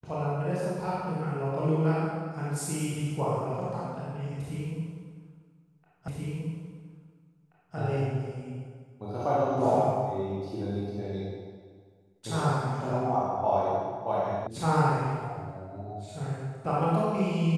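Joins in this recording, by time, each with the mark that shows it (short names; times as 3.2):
6.08 repeat of the last 1.68 s
14.47 sound cut off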